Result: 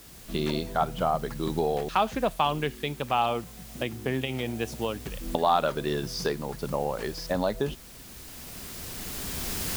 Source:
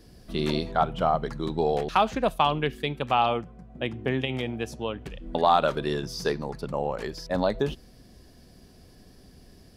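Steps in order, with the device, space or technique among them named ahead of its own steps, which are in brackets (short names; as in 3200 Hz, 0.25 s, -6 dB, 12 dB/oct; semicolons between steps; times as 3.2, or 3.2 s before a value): cheap recorder with automatic gain (white noise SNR 21 dB; recorder AGC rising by 9.2 dB/s); gain -2.5 dB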